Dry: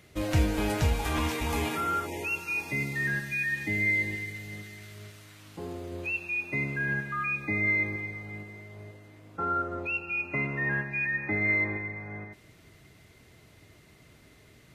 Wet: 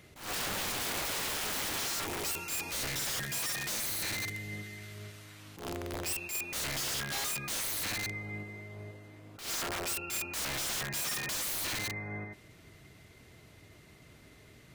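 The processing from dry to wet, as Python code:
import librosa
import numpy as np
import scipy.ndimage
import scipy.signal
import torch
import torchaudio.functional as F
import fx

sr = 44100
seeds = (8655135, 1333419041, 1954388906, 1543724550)

y = (np.mod(10.0 ** (30.0 / 20.0) * x + 1.0, 2.0) - 1.0) / 10.0 ** (30.0 / 20.0)
y = fx.attack_slew(y, sr, db_per_s=120.0)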